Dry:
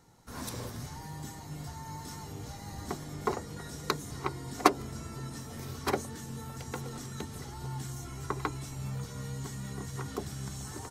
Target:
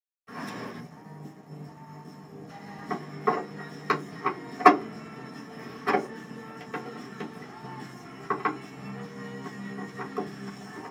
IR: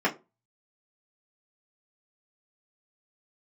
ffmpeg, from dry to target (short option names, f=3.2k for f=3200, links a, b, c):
-filter_complex "[0:a]asetnsamples=n=441:p=0,asendcmd='0.79 equalizer g -7;2.49 equalizer g 5',equalizer=f=2.2k:t=o:w=2.8:g=6.5,aeval=exprs='sgn(val(0))*max(abs(val(0))-0.00376,0)':c=same[a];[1:a]atrim=start_sample=2205[b];[a][b]afir=irnorm=-1:irlink=0,volume=-9.5dB"